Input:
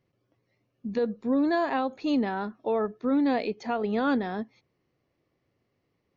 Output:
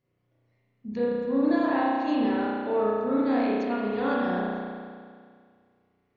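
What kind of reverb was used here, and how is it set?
spring reverb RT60 2 s, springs 33 ms, chirp 50 ms, DRR −7.5 dB
level −6.5 dB

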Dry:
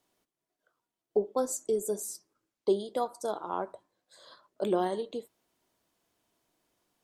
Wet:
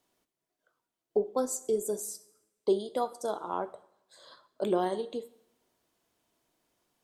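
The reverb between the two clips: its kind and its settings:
coupled-rooms reverb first 0.74 s, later 1.9 s, from −25 dB, DRR 14.5 dB

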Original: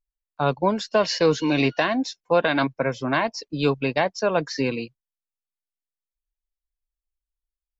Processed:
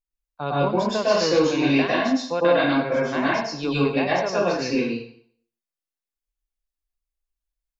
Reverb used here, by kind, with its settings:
dense smooth reverb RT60 0.58 s, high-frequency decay 0.9×, pre-delay 95 ms, DRR −7 dB
level −7 dB

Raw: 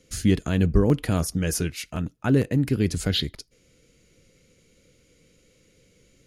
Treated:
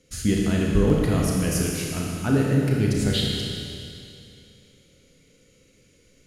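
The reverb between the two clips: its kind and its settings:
four-comb reverb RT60 2.6 s, combs from 26 ms, DRR −2.5 dB
level −2.5 dB

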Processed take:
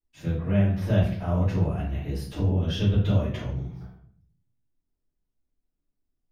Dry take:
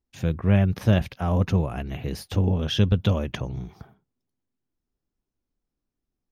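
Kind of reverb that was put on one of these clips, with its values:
rectangular room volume 76 cubic metres, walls mixed, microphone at 2.8 metres
level −16 dB

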